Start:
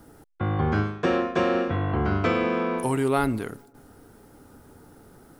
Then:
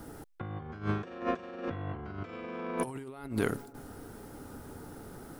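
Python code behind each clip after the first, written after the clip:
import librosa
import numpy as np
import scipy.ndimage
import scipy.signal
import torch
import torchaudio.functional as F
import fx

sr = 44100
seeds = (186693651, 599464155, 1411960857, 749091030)

y = fx.over_compress(x, sr, threshold_db=-31.0, ratio=-0.5)
y = y * librosa.db_to_amplitude(-3.5)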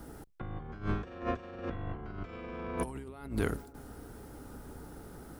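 y = fx.octave_divider(x, sr, octaves=2, level_db=-1.0)
y = y * librosa.db_to_amplitude(-2.5)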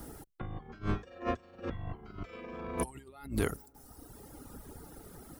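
y = fx.notch(x, sr, hz=1500.0, q=16.0)
y = fx.dereverb_blind(y, sr, rt60_s=1.6)
y = fx.high_shelf(y, sr, hz=5300.0, db=7.5)
y = y * librosa.db_to_amplitude(1.0)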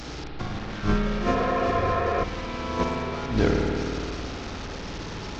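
y = fx.delta_mod(x, sr, bps=32000, step_db=-40.0)
y = fx.rev_spring(y, sr, rt60_s=3.0, pass_ms=(53,), chirp_ms=30, drr_db=-1.0)
y = fx.spec_repair(y, sr, seeds[0], start_s=1.37, length_s=0.84, low_hz=340.0, high_hz=2600.0, source='before')
y = y * librosa.db_to_amplitude(8.0)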